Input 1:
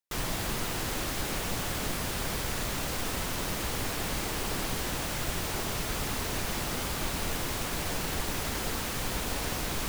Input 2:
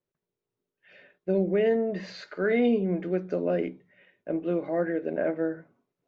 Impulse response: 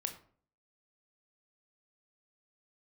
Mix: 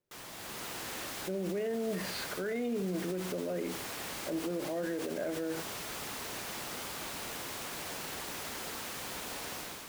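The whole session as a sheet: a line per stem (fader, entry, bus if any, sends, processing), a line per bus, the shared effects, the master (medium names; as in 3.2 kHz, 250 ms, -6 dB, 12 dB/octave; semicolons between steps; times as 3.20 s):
-13.0 dB, 0.00 s, no send, high-pass 340 Hz 6 dB/octave; level rider gain up to 7 dB
-0.5 dB, 0.00 s, send -8 dB, none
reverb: on, RT60 0.50 s, pre-delay 19 ms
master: peak limiter -27 dBFS, peak gain reduction 15.5 dB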